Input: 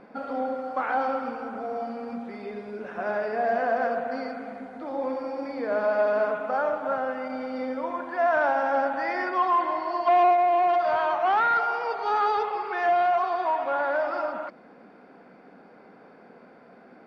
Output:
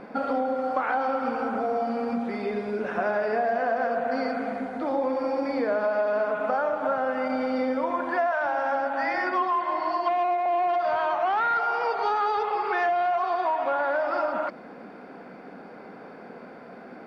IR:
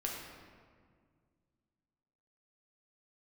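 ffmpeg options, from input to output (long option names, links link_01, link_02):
-filter_complex "[0:a]acompressor=threshold=-30dB:ratio=6,asettb=1/sr,asplit=3[link_01][link_02][link_03];[link_01]atrim=end=8.324[link_04];[link_02]atrim=start=8.32:end=10.46,asetpts=PTS-STARTPTS,afade=type=in:duration=0.004:curve=qsin,afade=type=out:start_time=2.136:duration=0.004:curve=qsin,acrossover=split=450[link_05][link_06];[link_05]adelay=90[link_07];[link_07][link_06]amix=inputs=2:normalize=0,atrim=end_sample=94374[link_08];[link_03]atrim=start=10.456[link_09];[link_04][link_08]acrossfade=duration=0.004:curve1=hsin:curve2=qsin[link_10];[link_10][link_09]acrossfade=duration=0.004:curve1=qsin:curve2=hsin,volume=7.5dB"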